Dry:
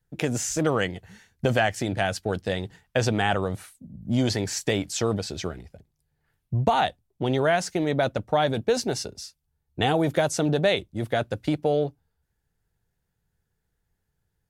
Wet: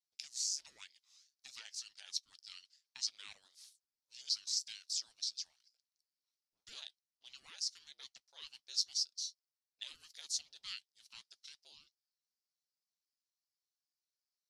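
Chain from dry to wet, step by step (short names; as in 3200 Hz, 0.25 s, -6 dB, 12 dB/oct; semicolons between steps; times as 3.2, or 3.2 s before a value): ladder band-pass 5300 Hz, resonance 75%; ring modulator with a swept carrier 420 Hz, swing 85%, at 2.7 Hz; gain +3 dB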